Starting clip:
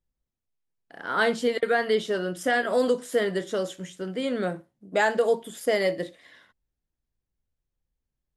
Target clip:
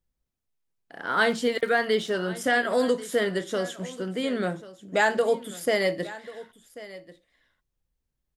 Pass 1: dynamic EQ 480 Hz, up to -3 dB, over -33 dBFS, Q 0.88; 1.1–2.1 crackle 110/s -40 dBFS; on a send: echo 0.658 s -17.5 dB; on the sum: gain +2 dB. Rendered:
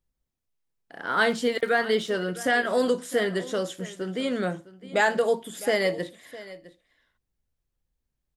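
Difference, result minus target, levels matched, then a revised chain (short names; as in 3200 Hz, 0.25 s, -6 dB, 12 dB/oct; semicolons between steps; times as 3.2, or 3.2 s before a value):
echo 0.431 s early
dynamic EQ 480 Hz, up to -3 dB, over -33 dBFS, Q 0.88; 1.1–2.1 crackle 110/s -40 dBFS; on a send: echo 1.089 s -17.5 dB; on the sum: gain +2 dB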